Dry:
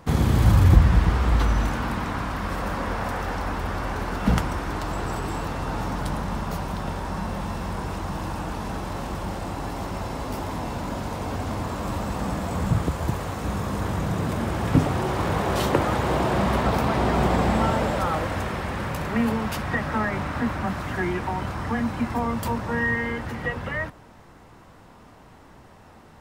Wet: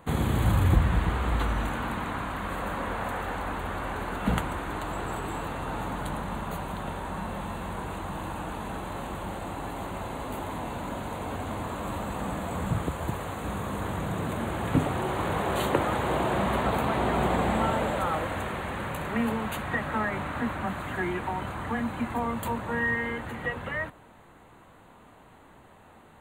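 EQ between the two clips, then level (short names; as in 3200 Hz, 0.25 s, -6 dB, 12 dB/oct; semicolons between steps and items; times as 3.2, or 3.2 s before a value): Butterworth band-stop 5300 Hz, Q 2; low shelf 200 Hz -5.5 dB; -2.5 dB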